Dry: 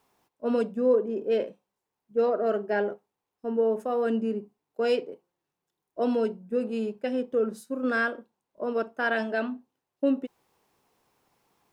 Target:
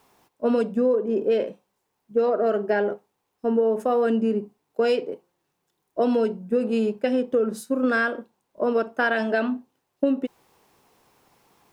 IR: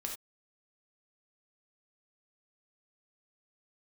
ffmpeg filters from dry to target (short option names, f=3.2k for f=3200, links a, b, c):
-af "acompressor=threshold=-27dB:ratio=6,volume=9dB"